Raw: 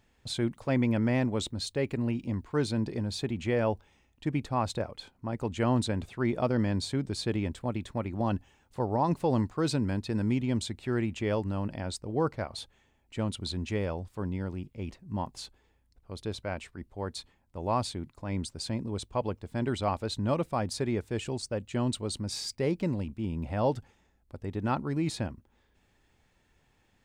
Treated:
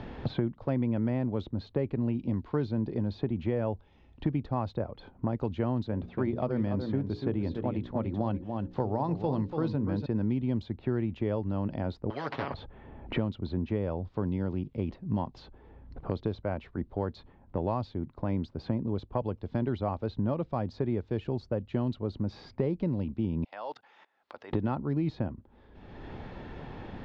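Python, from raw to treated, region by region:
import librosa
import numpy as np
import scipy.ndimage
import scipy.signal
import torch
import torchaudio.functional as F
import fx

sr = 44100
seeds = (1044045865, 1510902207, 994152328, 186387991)

y = fx.chain(x, sr, fx.hum_notches(base_hz=60, count=9),
    fx.echo_single(ms=288, db=-9.0), at=(5.88, 10.06))
y = fx.chain(y, sr, fx.highpass(hz=770.0, slope=12),
    fx.comb(ms=7.2, depth=0.96),
    fx.spectral_comp(ratio=10.0), at=(12.1, 12.54))
y = fx.chain(y, sr, fx.highpass(hz=1100.0, slope=12),
    fx.high_shelf(hz=2800.0, db=10.0),
    fx.level_steps(step_db=23), at=(23.44, 24.53))
y = scipy.signal.sosfilt(scipy.signal.cheby2(4, 50, 8600.0, 'lowpass', fs=sr, output='sos'), y)
y = fx.peak_eq(y, sr, hz=2500.0, db=-12.0, octaves=1.9)
y = fx.band_squash(y, sr, depth_pct=100)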